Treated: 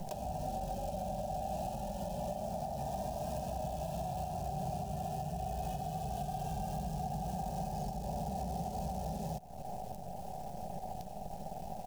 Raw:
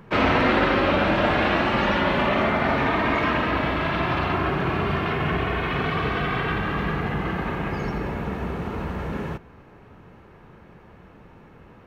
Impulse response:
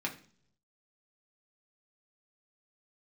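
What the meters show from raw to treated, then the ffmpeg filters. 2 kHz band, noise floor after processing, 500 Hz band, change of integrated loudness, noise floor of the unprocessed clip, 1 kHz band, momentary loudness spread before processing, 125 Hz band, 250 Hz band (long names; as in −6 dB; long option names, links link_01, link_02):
−36.0 dB, −44 dBFS, −15.0 dB, −16.5 dB, −49 dBFS, −12.5 dB, 10 LU, −12.0 dB, −17.0 dB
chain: -filter_complex "[0:a]acrossover=split=130|1400[link_01][link_02][link_03];[link_03]asoftclip=type=tanh:threshold=-25dB[link_04];[link_01][link_02][link_04]amix=inputs=3:normalize=0,asuperstop=centerf=2100:order=12:qfactor=3.9,acrossover=split=160[link_05][link_06];[link_06]acompressor=threshold=-31dB:ratio=8[link_07];[link_05][link_07]amix=inputs=2:normalize=0,highshelf=frequency=3400:gain=7,aecho=1:1:5.1:0.44,acrusher=bits=7:dc=4:mix=0:aa=0.000001,firequalizer=gain_entry='entry(160,0);entry(350,-13);entry(740,15);entry(1100,-24);entry(2300,-14);entry(5300,-1)':delay=0.05:min_phase=1,acompressor=threshold=-41dB:ratio=6,alimiter=level_in=12.5dB:limit=-24dB:level=0:latency=1:release=394,volume=-12.5dB,volume=8dB"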